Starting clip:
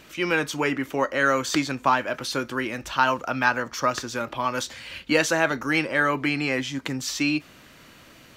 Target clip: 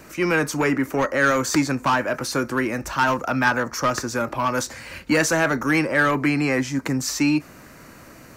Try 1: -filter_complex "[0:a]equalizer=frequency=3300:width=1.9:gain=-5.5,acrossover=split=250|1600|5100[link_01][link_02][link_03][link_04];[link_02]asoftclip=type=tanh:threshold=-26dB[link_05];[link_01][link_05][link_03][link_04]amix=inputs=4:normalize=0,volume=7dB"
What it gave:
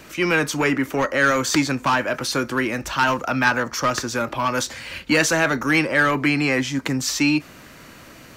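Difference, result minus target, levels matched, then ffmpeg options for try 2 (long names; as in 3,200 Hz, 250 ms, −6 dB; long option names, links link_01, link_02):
4,000 Hz band +3.5 dB
-filter_complex "[0:a]equalizer=frequency=3300:width=1.9:gain=-16,acrossover=split=250|1600|5100[link_01][link_02][link_03][link_04];[link_02]asoftclip=type=tanh:threshold=-26dB[link_05];[link_01][link_05][link_03][link_04]amix=inputs=4:normalize=0,volume=7dB"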